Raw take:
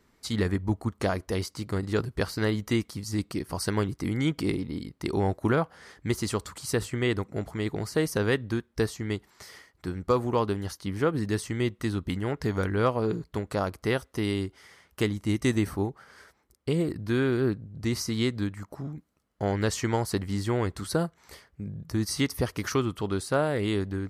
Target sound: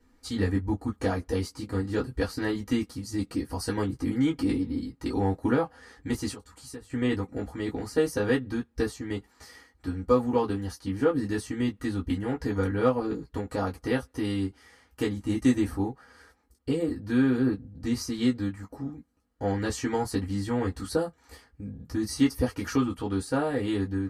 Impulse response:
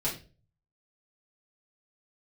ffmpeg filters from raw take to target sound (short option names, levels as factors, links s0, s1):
-filter_complex "[0:a]asettb=1/sr,asplit=3[s0][s1][s2];[s0]atrim=end=6.314[s3];[s1]atrim=start=6.31:end=6.9,asetpts=PTS-STARTPTS,afade=t=in:d=0.004:c=qsin,afade=t=out:st=0.586:d=0.004:c=qsin,acompressor=threshold=0.00891:ratio=5[s4];[s2]atrim=start=6.896[s5];[s3][s4]acrossfade=d=0.004:c1=hsin:c2=qsin[s6];[s6][s5]acrossfade=d=0.004:c1=qsin:c2=hsin[s7];[1:a]atrim=start_sample=2205,atrim=end_sample=3087,asetrate=83790,aresample=44100[s8];[s7][s8]afir=irnorm=-1:irlink=0,volume=0.708"